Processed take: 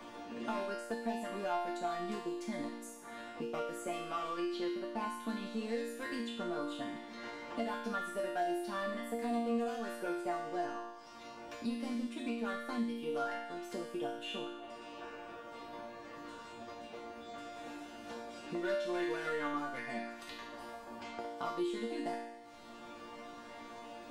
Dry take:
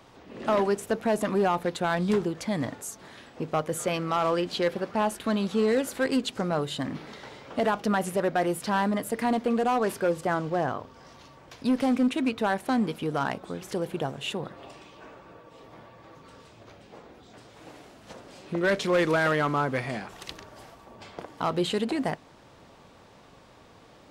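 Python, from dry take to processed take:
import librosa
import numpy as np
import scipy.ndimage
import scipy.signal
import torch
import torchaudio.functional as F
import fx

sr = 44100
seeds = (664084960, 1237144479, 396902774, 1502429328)

y = fx.transient(x, sr, attack_db=1, sustain_db=-6)
y = fx.resonator_bank(y, sr, root=58, chord='major', decay_s=0.72)
y = fx.band_squash(y, sr, depth_pct=70)
y = F.gain(torch.from_numpy(y), 11.5).numpy()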